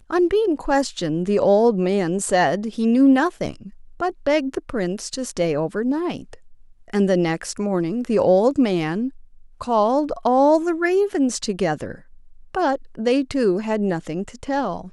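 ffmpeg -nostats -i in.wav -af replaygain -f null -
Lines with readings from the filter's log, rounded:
track_gain = +0.4 dB
track_peak = 0.357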